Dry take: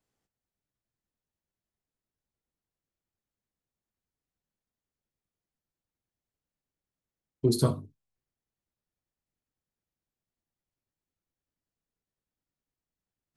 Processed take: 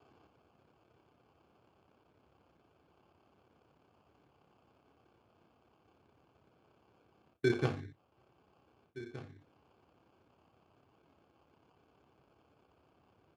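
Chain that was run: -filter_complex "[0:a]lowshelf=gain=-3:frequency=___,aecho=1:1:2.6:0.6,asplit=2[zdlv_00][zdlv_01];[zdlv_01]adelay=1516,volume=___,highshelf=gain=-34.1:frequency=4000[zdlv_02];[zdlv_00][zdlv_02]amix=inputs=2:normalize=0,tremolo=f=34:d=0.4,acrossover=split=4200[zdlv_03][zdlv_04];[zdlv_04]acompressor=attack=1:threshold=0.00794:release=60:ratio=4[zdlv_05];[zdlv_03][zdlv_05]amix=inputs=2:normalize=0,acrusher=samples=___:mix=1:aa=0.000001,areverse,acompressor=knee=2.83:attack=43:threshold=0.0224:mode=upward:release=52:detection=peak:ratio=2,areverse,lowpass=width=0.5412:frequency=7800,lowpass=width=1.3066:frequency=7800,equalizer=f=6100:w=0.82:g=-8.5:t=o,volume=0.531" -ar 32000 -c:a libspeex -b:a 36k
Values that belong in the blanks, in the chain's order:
100, 0.0794, 23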